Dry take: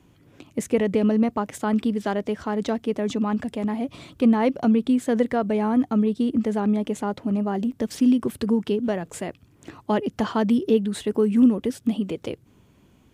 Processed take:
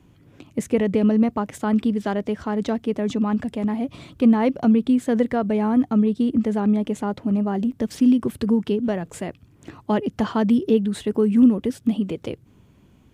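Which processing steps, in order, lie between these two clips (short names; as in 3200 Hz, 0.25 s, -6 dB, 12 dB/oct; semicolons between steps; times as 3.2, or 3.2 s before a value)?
tone controls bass +4 dB, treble -2 dB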